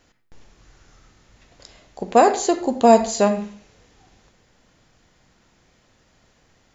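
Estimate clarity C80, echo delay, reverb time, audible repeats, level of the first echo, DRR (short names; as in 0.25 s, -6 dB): 12.5 dB, none, 0.50 s, none, none, 7.0 dB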